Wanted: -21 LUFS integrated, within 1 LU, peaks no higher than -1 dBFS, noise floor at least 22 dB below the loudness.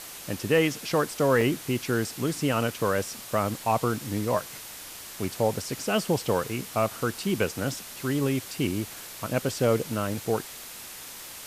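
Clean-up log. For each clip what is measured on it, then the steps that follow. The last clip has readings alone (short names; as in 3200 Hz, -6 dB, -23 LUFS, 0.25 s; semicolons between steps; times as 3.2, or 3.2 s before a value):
dropouts 1; longest dropout 3.2 ms; noise floor -42 dBFS; noise floor target -50 dBFS; loudness -27.5 LUFS; peak -11.5 dBFS; loudness target -21.0 LUFS
-> interpolate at 1.41, 3.2 ms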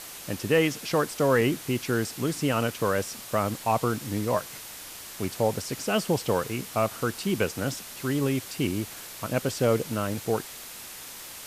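dropouts 0; noise floor -42 dBFS; noise floor target -50 dBFS
-> denoiser 8 dB, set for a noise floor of -42 dBFS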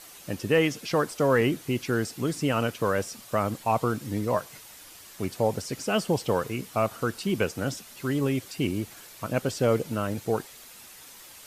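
noise floor -48 dBFS; noise floor target -50 dBFS
-> denoiser 6 dB, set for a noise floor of -48 dBFS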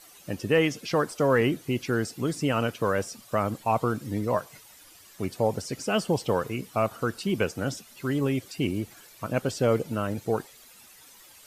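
noise floor -52 dBFS; loudness -28.0 LUFS; peak -11.5 dBFS; loudness target -21.0 LUFS
-> gain +7 dB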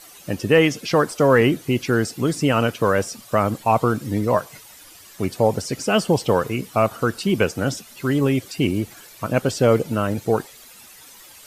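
loudness -21.0 LUFS; peak -4.5 dBFS; noise floor -45 dBFS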